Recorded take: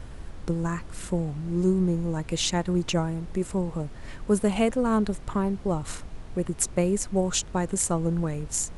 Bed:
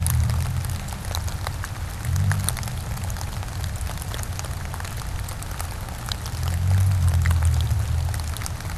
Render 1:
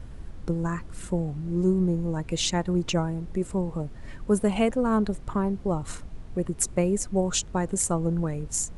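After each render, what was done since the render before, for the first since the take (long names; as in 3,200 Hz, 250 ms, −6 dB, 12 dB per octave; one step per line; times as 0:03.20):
broadband denoise 6 dB, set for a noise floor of −42 dBFS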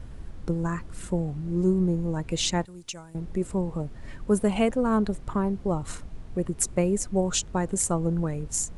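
0:02.65–0:03.15: first-order pre-emphasis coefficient 0.9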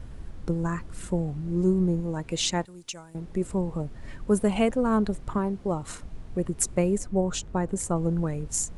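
0:02.00–0:03.36: low-shelf EQ 130 Hz −7 dB
0:05.38–0:06.03: low-shelf EQ 120 Hz −7.5 dB
0:06.98–0:07.96: high-shelf EQ 2,300 Hz −7.5 dB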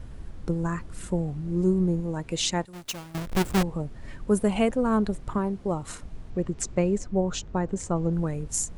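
0:02.73–0:03.63: each half-wave held at its own peak
0:06.30–0:08.13: low-pass filter 7,000 Hz 24 dB per octave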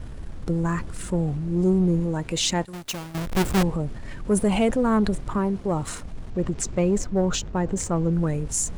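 leveller curve on the samples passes 1
transient designer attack −2 dB, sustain +5 dB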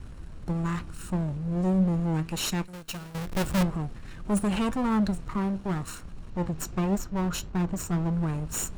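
lower of the sound and its delayed copy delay 0.72 ms
flanger 1.6 Hz, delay 4.9 ms, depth 1.5 ms, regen +85%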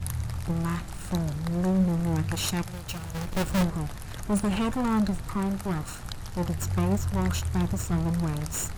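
mix in bed −10.5 dB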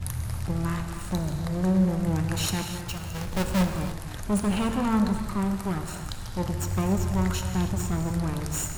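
reverb whose tail is shaped and stops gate 330 ms flat, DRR 5.5 dB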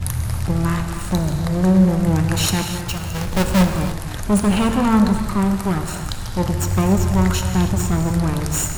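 level +8.5 dB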